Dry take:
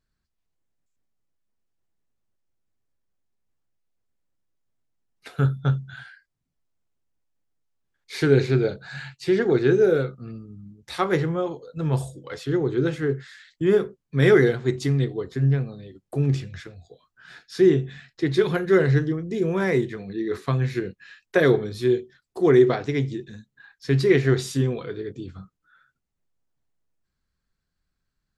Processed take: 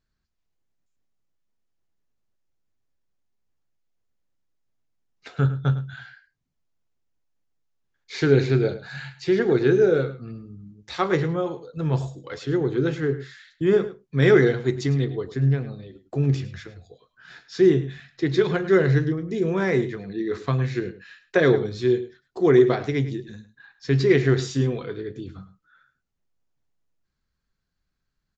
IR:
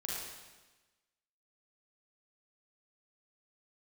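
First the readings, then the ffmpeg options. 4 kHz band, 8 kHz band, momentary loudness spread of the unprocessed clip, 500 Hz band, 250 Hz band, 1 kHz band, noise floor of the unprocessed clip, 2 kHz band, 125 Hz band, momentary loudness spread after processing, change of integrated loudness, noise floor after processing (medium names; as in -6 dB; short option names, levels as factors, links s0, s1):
0.0 dB, no reading, 17 LU, 0.0 dB, 0.0 dB, 0.0 dB, -80 dBFS, 0.0 dB, 0.0 dB, 17 LU, 0.0 dB, -78 dBFS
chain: -filter_complex "[0:a]asplit=2[s0][s1];[s1]adelay=105,volume=0.2,highshelf=f=4000:g=-2.36[s2];[s0][s2]amix=inputs=2:normalize=0,aresample=16000,aresample=44100"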